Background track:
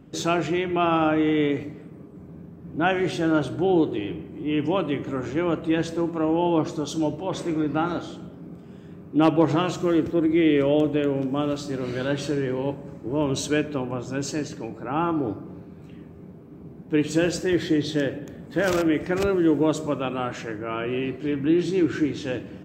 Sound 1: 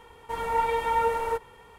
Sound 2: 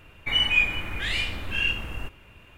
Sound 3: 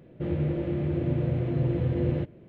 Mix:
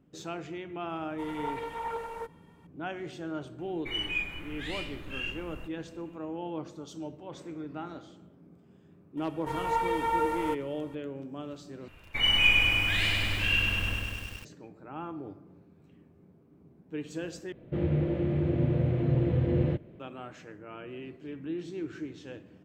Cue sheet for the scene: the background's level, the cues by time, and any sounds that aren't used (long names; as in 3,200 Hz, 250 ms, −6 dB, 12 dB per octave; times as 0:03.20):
background track −15 dB
0:00.89: mix in 1 −11 dB + highs frequency-modulated by the lows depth 0.26 ms
0:03.59: mix in 2 −11 dB
0:09.17: mix in 1 −3.5 dB
0:11.88: overwrite with 2 −3 dB + feedback echo at a low word length 100 ms, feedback 80%, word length 8 bits, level −3 dB
0:17.52: overwrite with 3